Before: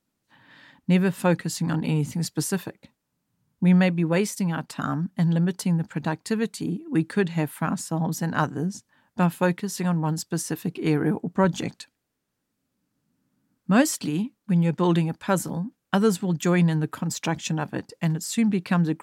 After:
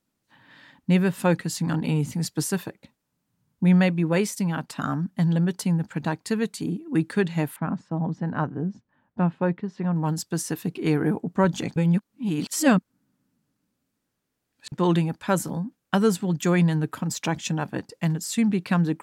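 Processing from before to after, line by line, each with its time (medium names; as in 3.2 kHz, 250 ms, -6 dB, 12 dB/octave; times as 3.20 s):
7.56–9.96 s: tape spacing loss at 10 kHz 41 dB
11.76–14.72 s: reverse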